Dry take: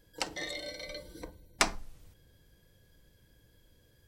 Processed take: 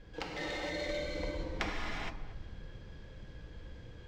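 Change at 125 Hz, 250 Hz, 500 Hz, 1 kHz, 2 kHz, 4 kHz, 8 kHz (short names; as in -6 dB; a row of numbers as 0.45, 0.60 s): +9.0, +4.0, +4.0, -3.5, -1.5, -4.5, -14.5 dB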